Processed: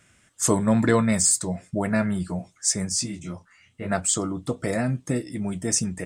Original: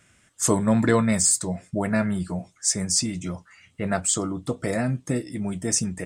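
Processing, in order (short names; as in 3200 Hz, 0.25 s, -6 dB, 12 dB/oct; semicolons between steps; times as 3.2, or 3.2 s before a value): 2.89–3.9 detuned doubles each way 33 cents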